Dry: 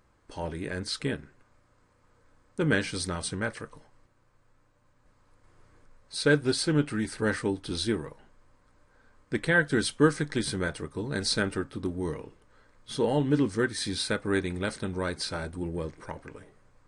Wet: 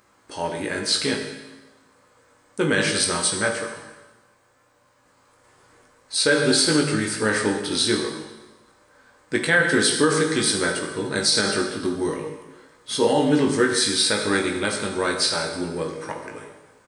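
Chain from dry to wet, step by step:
high-pass filter 360 Hz 6 dB per octave
high-shelf EQ 5,700 Hz +6 dB
double-tracking delay 19 ms −5.5 dB
dense smooth reverb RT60 1.2 s, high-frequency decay 0.95×, DRR 3 dB
boost into a limiter +14.5 dB
level −7 dB

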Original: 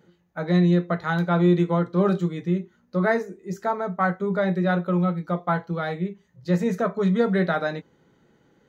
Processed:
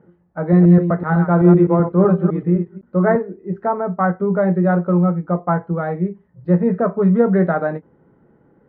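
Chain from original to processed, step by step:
0:00.40–0:03.16: delay that plays each chunk backwards 127 ms, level −7 dB
Bessel low-pass filter 1,100 Hz, order 4
every ending faded ahead of time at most 460 dB per second
level +7 dB

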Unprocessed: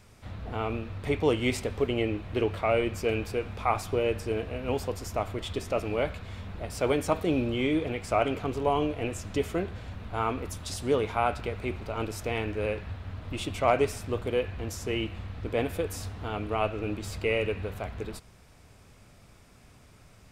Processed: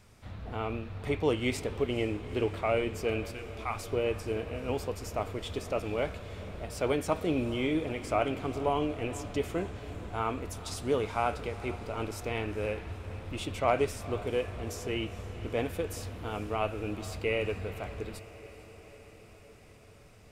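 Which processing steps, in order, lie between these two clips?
0:03.31–0:03.90: parametric band 430 Hz −14 dB 1.9 octaves
feedback delay with all-pass diffusion 451 ms, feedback 69%, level −16 dB
level −3 dB

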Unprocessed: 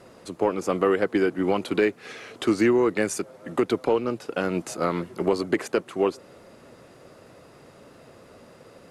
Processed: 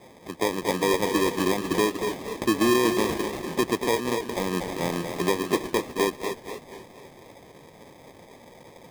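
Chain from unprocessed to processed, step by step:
dynamic equaliser 1,100 Hz, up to −8 dB, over −39 dBFS, Q 0.89
feedback echo with a high-pass in the loop 237 ms, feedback 57%, high-pass 500 Hz, level −3.5 dB
decimation without filtering 31×
low-shelf EQ 64 Hz −7 dB
feedback echo with a swinging delay time 246 ms, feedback 46%, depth 144 cents, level −12 dB

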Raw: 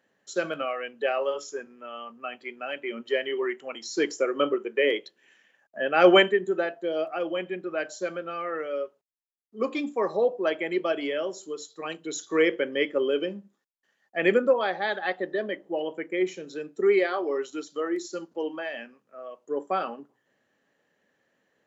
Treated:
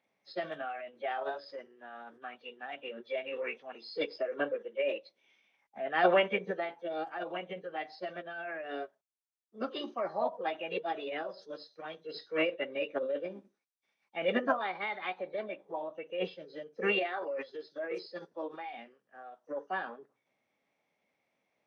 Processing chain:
hearing-aid frequency compression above 2,200 Hz 1.5 to 1
formants moved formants +4 semitones
level −8 dB

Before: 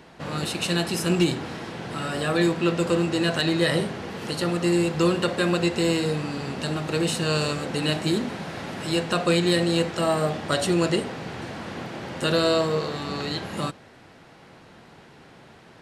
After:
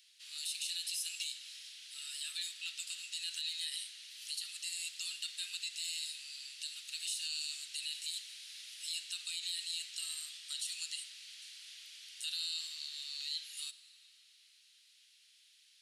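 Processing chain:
inverse Chebyshev high-pass filter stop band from 550 Hz, stop band 80 dB
parametric band 9,900 Hz +6 dB 0.23 octaves
brickwall limiter −25 dBFS, peak gain reduction 10.5 dB
on a send: convolution reverb RT60 3.7 s, pre-delay 10 ms, DRR 14 dB
on the sum: level −3 dB

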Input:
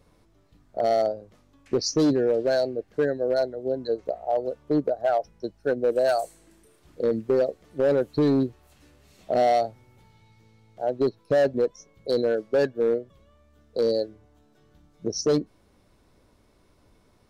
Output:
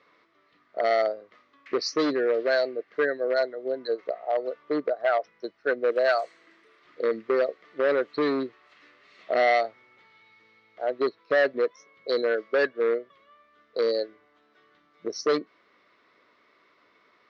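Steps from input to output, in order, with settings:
loudspeaker in its box 490–4,400 Hz, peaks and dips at 560 Hz −3 dB, 820 Hz −9 dB, 1,200 Hz +8 dB, 2,000 Hz +10 dB
level +3.5 dB

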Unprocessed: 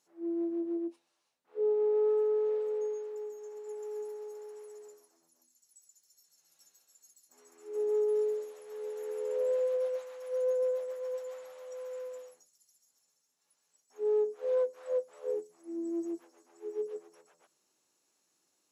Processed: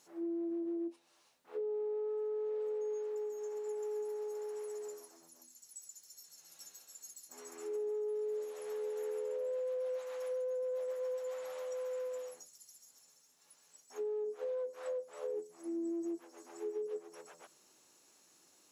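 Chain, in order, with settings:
brickwall limiter −31.5 dBFS, peak gain reduction 9 dB
downward compressor 2.5 to 1, threshold −52 dBFS, peak gain reduction 11.5 dB
level +10 dB

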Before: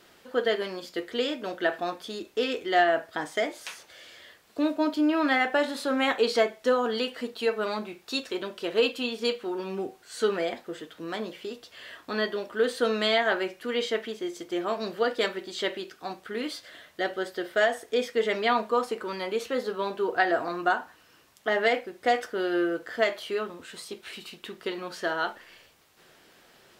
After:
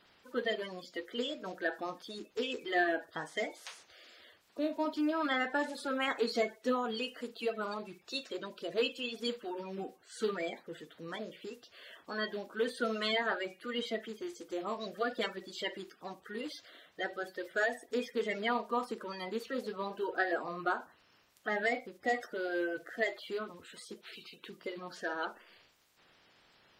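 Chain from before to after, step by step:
spectral magnitudes quantised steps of 30 dB
level −7.5 dB

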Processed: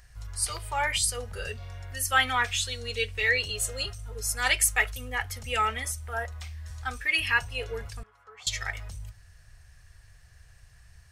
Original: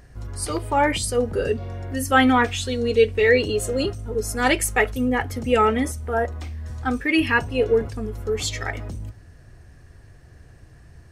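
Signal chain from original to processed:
guitar amp tone stack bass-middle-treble 10-0-10
0:08.03–0:08.47: envelope filter 700–1,500 Hz, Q 2.1, down, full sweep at −28 dBFS
level +2 dB

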